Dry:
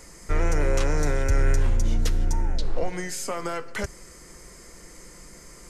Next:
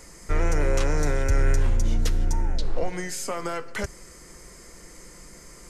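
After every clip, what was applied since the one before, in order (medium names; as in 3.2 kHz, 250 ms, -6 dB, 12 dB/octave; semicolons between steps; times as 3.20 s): no audible change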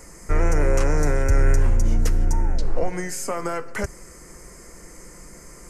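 peaking EQ 3.6 kHz -12.5 dB 0.71 oct; trim +3.5 dB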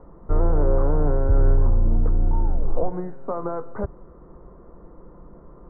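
steep low-pass 1.2 kHz 36 dB/octave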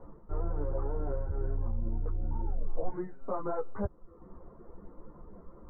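reverb removal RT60 0.73 s; reverse; compression 6:1, threshold -25 dBFS, peak gain reduction 11 dB; reverse; three-phase chorus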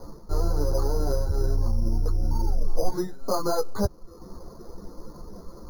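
careless resampling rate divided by 8×, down none, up hold; trim +8.5 dB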